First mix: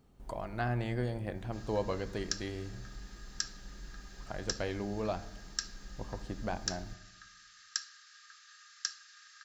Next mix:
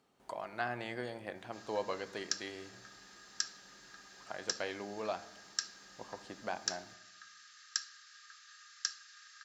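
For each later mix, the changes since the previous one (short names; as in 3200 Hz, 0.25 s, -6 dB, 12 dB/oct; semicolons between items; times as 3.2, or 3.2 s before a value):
speech: add weighting filter A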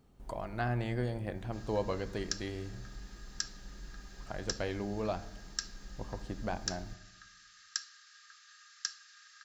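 speech: remove weighting filter A; background: send -11.0 dB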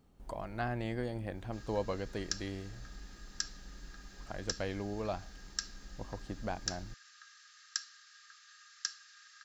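reverb: off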